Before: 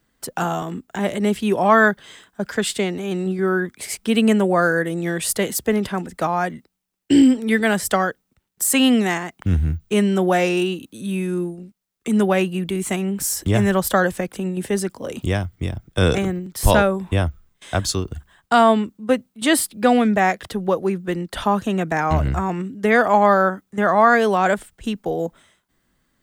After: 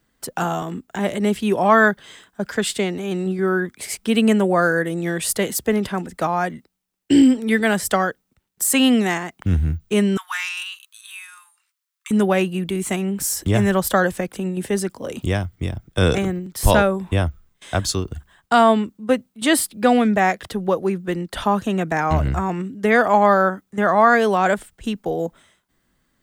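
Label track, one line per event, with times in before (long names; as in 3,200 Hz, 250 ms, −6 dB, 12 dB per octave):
10.170000	12.110000	Butterworth high-pass 980 Hz 72 dB per octave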